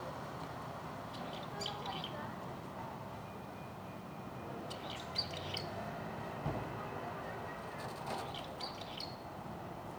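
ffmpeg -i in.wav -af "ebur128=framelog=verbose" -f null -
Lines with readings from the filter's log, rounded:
Integrated loudness:
  I:         -43.5 LUFS
  Threshold: -53.5 LUFS
Loudness range:
  LRA:         2.9 LU
  Threshold: -63.3 LUFS
  LRA low:   -44.7 LUFS
  LRA high:  -41.8 LUFS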